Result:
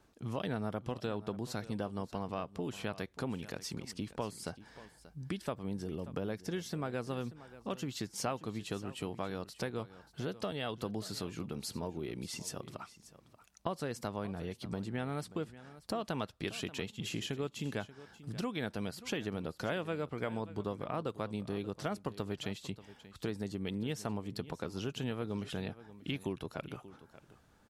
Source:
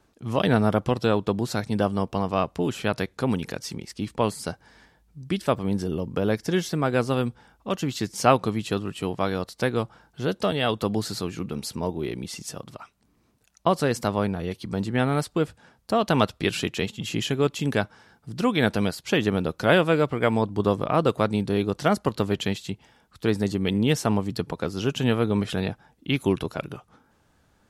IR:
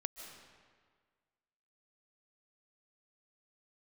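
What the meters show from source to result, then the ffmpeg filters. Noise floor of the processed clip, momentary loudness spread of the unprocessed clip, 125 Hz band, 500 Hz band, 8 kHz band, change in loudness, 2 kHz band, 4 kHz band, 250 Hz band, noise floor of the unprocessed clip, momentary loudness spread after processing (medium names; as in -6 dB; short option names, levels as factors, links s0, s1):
-64 dBFS, 10 LU, -13.5 dB, -14.5 dB, -9.5 dB, -14.0 dB, -14.5 dB, -12.0 dB, -13.5 dB, -64 dBFS, 8 LU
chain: -filter_complex "[0:a]acompressor=threshold=0.02:ratio=3,asplit=2[s0][s1];[s1]aecho=0:1:584:0.15[s2];[s0][s2]amix=inputs=2:normalize=0,volume=0.668"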